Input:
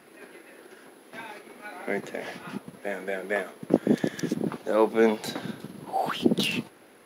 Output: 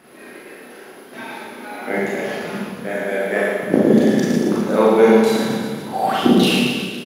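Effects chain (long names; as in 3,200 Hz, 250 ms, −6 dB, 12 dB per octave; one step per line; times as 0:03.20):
low-shelf EQ 320 Hz +2.5 dB
reverse bouncing-ball delay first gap 110 ms, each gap 1.1×, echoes 5
four-comb reverb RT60 0.53 s, combs from 29 ms, DRR −3.5 dB
level +2.5 dB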